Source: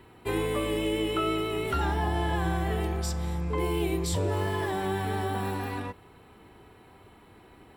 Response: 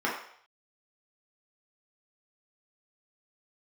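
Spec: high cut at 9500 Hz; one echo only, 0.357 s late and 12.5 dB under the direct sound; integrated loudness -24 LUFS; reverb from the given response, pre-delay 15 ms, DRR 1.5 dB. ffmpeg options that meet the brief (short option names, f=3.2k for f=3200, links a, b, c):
-filter_complex "[0:a]lowpass=9.5k,aecho=1:1:357:0.237,asplit=2[a][b];[1:a]atrim=start_sample=2205,adelay=15[c];[b][c]afir=irnorm=-1:irlink=0,volume=-13dB[d];[a][d]amix=inputs=2:normalize=0,volume=4dB"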